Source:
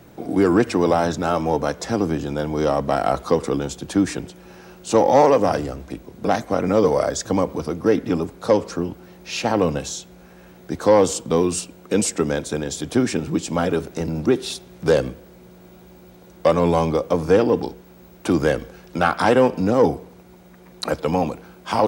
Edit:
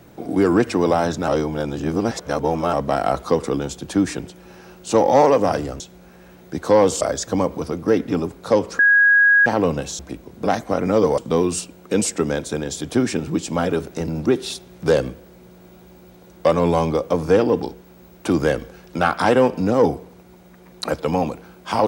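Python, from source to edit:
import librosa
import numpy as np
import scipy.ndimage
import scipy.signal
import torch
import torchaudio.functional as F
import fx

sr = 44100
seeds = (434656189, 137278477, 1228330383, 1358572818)

y = fx.edit(x, sr, fx.reverse_span(start_s=1.28, length_s=1.45),
    fx.swap(start_s=5.8, length_s=1.19, other_s=9.97, other_length_s=1.21),
    fx.bleep(start_s=8.77, length_s=0.67, hz=1650.0, db=-10.0), tone=tone)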